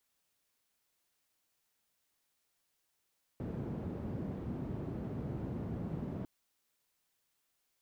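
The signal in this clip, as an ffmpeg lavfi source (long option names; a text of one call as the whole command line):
ffmpeg -f lavfi -i "anoisesrc=color=white:duration=2.85:sample_rate=44100:seed=1,highpass=frequency=81,lowpass=frequency=220,volume=-13.3dB" out.wav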